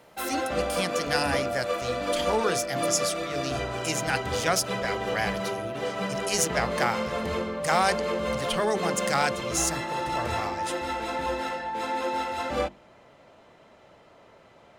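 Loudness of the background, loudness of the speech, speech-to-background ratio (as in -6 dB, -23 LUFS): -30.0 LUFS, -29.0 LUFS, 1.0 dB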